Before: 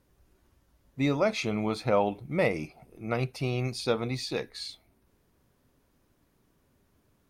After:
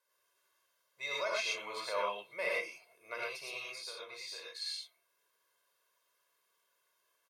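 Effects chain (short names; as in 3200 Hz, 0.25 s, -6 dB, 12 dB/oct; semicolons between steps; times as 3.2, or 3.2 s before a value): HPF 990 Hz 12 dB/oct; comb 1.9 ms, depth 99%; 3.59–4.55 compressor 12:1, threshold -38 dBFS, peak gain reduction 12.5 dB; non-linear reverb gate 0.14 s rising, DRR -3.5 dB; gain -9 dB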